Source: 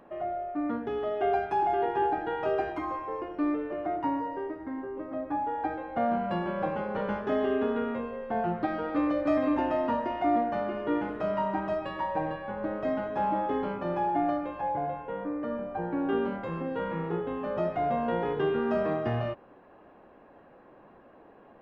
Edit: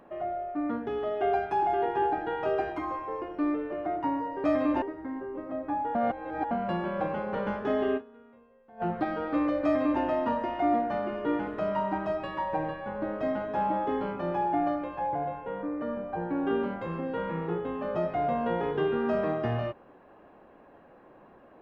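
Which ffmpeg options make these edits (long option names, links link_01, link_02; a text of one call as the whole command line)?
ffmpeg -i in.wav -filter_complex "[0:a]asplit=7[link_01][link_02][link_03][link_04][link_05][link_06][link_07];[link_01]atrim=end=4.442[link_08];[link_02]atrim=start=9.258:end=9.642[link_09];[link_03]atrim=start=4.438:end=5.572[link_10];[link_04]atrim=start=5.568:end=6.132,asetpts=PTS-STARTPTS,areverse[link_11];[link_05]atrim=start=6.128:end=7.75,asetpts=PTS-STARTPTS,afade=type=out:start_time=1.462:duration=0.16:curve=exp:silence=0.0668344[link_12];[link_06]atrim=start=7.75:end=8.28,asetpts=PTS-STARTPTS,volume=-23.5dB[link_13];[link_07]atrim=start=8.28,asetpts=PTS-STARTPTS,afade=type=in:duration=0.16:curve=exp:silence=0.0668344[link_14];[link_08][link_09]acrossfade=duration=0.004:curve1=hsin:curve2=hsin[link_15];[link_15][link_10]acrossfade=duration=0.004:curve1=hsin:curve2=hsin[link_16];[link_16][link_11]acrossfade=duration=0.004:curve1=hsin:curve2=hsin[link_17];[link_12][link_13][link_14]concat=n=3:v=0:a=1[link_18];[link_17][link_18]acrossfade=duration=0.004:curve1=hsin:curve2=hsin" out.wav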